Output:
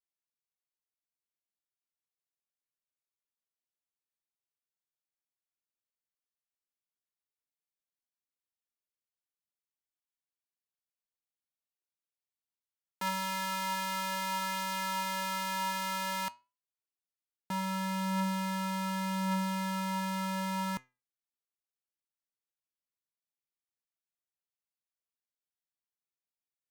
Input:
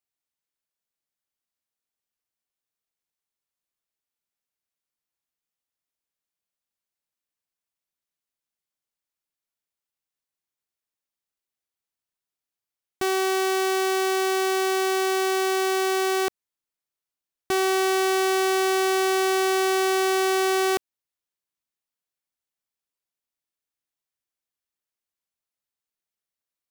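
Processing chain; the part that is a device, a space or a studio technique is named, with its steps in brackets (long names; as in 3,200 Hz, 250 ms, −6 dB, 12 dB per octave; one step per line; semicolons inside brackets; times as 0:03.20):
alien voice (ring modulation 570 Hz; flanger 0.16 Hz, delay 4.3 ms, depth 5.2 ms, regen +82%)
level −4 dB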